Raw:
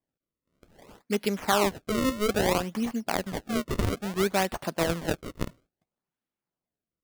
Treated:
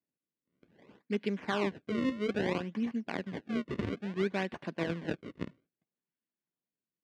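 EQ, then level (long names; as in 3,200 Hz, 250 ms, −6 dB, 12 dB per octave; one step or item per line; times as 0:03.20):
band-pass filter 170–2,200 Hz
parametric band 760 Hz −11 dB 1.5 octaves
notch filter 1,300 Hz, Q 6.5
−1.0 dB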